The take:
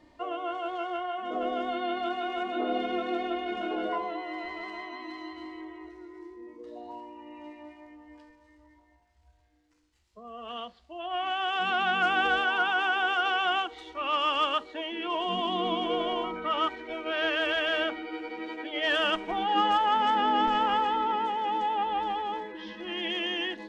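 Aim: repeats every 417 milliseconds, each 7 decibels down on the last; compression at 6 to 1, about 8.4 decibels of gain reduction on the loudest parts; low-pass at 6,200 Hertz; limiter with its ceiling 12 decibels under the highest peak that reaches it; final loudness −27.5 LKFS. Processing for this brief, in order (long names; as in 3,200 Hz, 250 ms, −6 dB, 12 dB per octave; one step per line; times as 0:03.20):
low-pass filter 6,200 Hz
downward compressor 6 to 1, threshold −31 dBFS
brickwall limiter −34.5 dBFS
repeating echo 417 ms, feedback 45%, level −7 dB
level +13.5 dB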